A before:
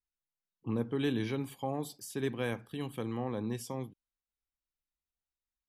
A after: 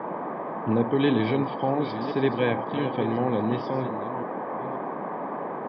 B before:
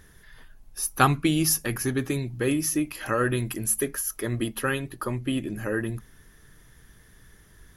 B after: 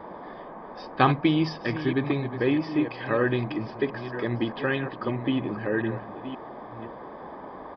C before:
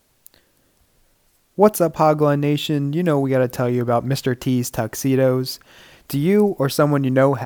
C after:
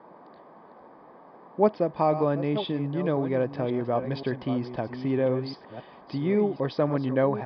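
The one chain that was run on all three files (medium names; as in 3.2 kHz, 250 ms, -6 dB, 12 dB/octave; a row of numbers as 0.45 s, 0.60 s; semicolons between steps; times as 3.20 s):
chunks repeated in reverse 529 ms, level -10.5 dB; band noise 160–1200 Hz -42 dBFS; distance through air 120 m; comb of notches 1.4 kHz; resampled via 11.025 kHz; normalise loudness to -27 LUFS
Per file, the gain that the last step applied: +10.5 dB, +2.0 dB, -7.0 dB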